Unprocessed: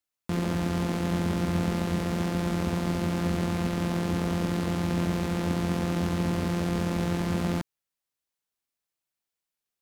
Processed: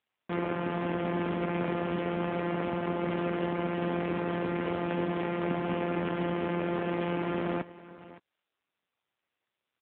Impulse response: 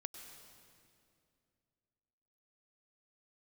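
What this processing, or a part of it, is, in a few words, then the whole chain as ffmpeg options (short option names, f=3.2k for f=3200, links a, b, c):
satellite phone: -filter_complex "[0:a]asettb=1/sr,asplit=3[a][b][c];[a]atrim=end=4.034[d];[b]atrim=start=4.03:end=4.72,asetpts=PTS-STARTPTS,afade=t=in:d=0.004:c=qsin,afade=t=out:st=0.686:d=0.004:c=qsin,lowpass=f=5k:w=0.5412,lowpass=f=5k:w=1.3066[e];[c]atrim=start=4.716[f];[d][e]acrossfade=d=0.004:c1=hsin:c2=qsin[g];[g][f]acrossfade=d=0.004:c1=qsin:c2=hsin,highpass=310,lowpass=3.1k,aecho=1:1:565:0.141,volume=3.5dB" -ar 8000 -c:a libopencore_amrnb -b:a 5900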